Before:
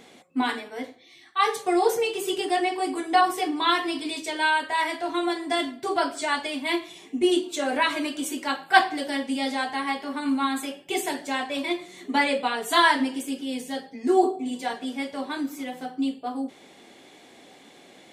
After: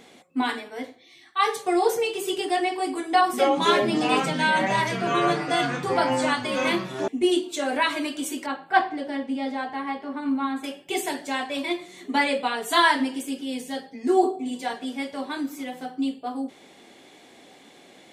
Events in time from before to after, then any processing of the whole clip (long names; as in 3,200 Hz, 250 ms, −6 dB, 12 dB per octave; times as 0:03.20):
0:03.09–0:07.08: delay with pitch and tempo change per echo 241 ms, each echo −5 semitones, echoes 3
0:08.46–0:10.64: low-pass filter 1,200 Hz 6 dB per octave